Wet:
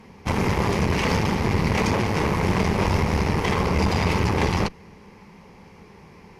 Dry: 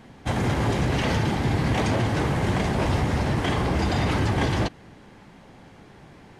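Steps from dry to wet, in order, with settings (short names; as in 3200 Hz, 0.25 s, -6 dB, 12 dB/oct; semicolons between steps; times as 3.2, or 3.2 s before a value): ripple EQ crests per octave 0.83, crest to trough 9 dB; added harmonics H 4 -16 dB, 8 -25 dB, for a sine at -9 dBFS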